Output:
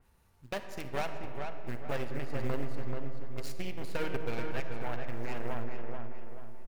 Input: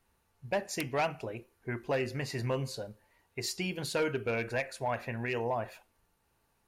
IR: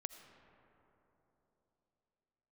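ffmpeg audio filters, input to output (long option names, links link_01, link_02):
-filter_complex "[0:a]lowshelf=frequency=180:gain=7.5,asplit=2[link_01][link_02];[link_02]acompressor=threshold=-44dB:ratio=8,volume=-1dB[link_03];[link_01][link_03]amix=inputs=2:normalize=0,aeval=exprs='0.112*(cos(1*acos(clip(val(0)/0.112,-1,1)))-cos(1*PI/2))+0.0316*(cos(3*acos(clip(val(0)/0.112,-1,1)))-cos(3*PI/2))+0.0126*(cos(6*acos(clip(val(0)/0.112,-1,1)))-cos(6*PI/2))+0.00447*(cos(8*acos(clip(val(0)/0.112,-1,1)))-cos(8*PI/2))':channel_layout=same,acompressor=mode=upward:threshold=-48dB:ratio=2.5,acrusher=bits=5:mode=log:mix=0:aa=0.000001,asplit=2[link_04][link_05];[link_05]adelay=433,lowpass=frequency=2400:poles=1,volume=-4.5dB,asplit=2[link_06][link_07];[link_07]adelay=433,lowpass=frequency=2400:poles=1,volume=0.41,asplit=2[link_08][link_09];[link_09]adelay=433,lowpass=frequency=2400:poles=1,volume=0.41,asplit=2[link_10][link_11];[link_11]adelay=433,lowpass=frequency=2400:poles=1,volume=0.41,asplit=2[link_12][link_13];[link_13]adelay=433,lowpass=frequency=2400:poles=1,volume=0.41[link_14];[link_04][link_06][link_08][link_10][link_12][link_14]amix=inputs=6:normalize=0[link_15];[1:a]atrim=start_sample=2205,asetrate=66150,aresample=44100[link_16];[link_15][link_16]afir=irnorm=-1:irlink=0,adynamicequalizer=threshold=0.00141:dfrequency=2800:dqfactor=0.7:tfrequency=2800:tqfactor=0.7:attack=5:release=100:ratio=0.375:range=3:mode=cutabove:tftype=highshelf,volume=4dB"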